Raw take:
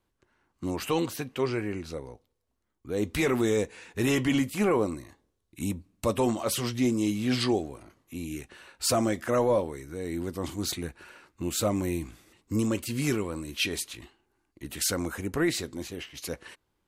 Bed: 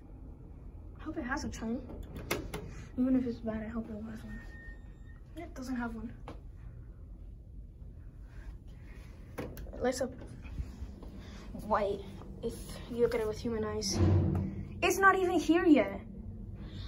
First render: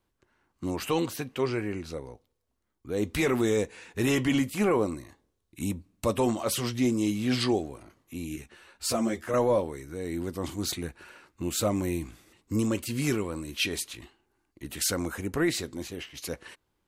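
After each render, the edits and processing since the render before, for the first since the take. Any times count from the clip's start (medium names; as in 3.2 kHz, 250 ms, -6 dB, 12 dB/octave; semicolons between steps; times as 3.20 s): 8.36–9.34 s: three-phase chorus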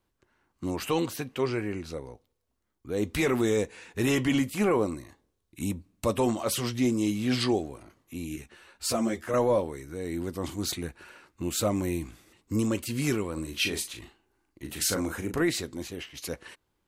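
13.33–15.42 s: doubling 38 ms -7 dB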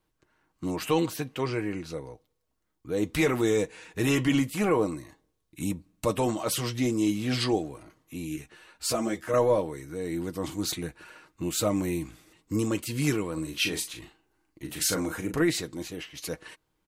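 comb 6.4 ms, depth 41%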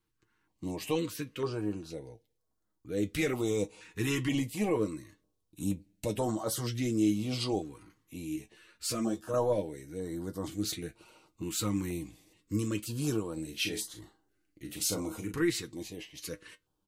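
flange 0.45 Hz, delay 8.7 ms, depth 1.7 ms, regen +56%; step-sequenced notch 2.1 Hz 640–2500 Hz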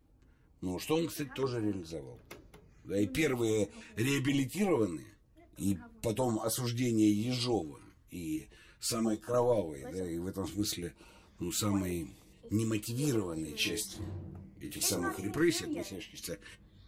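add bed -15.5 dB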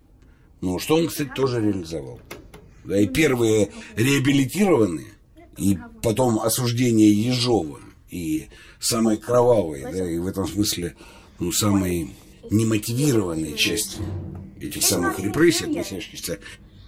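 trim +12 dB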